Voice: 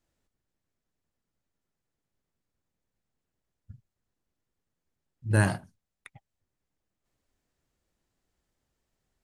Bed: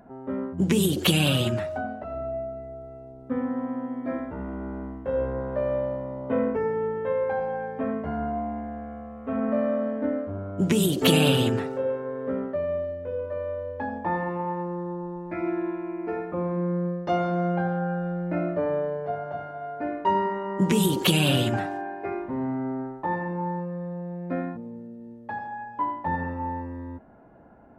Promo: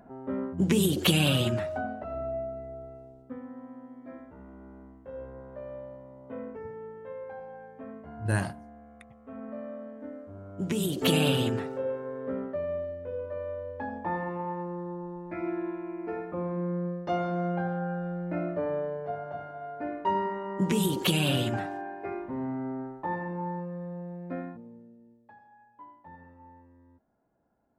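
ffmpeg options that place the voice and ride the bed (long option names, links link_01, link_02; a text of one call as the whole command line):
ffmpeg -i stem1.wav -i stem2.wav -filter_complex "[0:a]adelay=2950,volume=-4.5dB[link_01];[1:a]volume=8dB,afade=type=out:start_time=2.83:duration=0.56:silence=0.237137,afade=type=in:start_time=10.17:duration=1:silence=0.316228,afade=type=out:start_time=24.01:duration=1.35:silence=0.133352[link_02];[link_01][link_02]amix=inputs=2:normalize=0" out.wav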